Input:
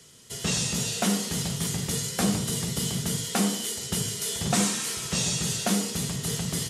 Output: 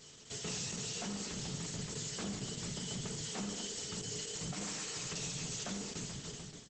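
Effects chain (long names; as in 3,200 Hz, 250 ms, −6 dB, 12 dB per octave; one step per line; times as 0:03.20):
fade-out on the ending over 0.99 s
parametric band 77 Hz −6.5 dB 0.4 octaves
0:04.03–0:05.48: comb filter 6.6 ms, depth 69%
dynamic equaliser 3,700 Hz, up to −3 dB, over −48 dBFS, Q 4.8
brickwall limiter −23 dBFS, peak gain reduction 10.5 dB
downward compressor 1.5 to 1, threshold −45 dBFS, peak gain reduction 6.5 dB
pitch vibrato 13 Hz 21 cents
0:00.84–0:01.41: gain into a clipping stage and back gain 32.5 dB
pitch vibrato 0.3 Hz 8 cents
tuned comb filter 430 Hz, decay 0.22 s, harmonics all, mix 70%
repeating echo 228 ms, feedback 59%, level −15 dB
level +7 dB
Opus 10 kbit/s 48,000 Hz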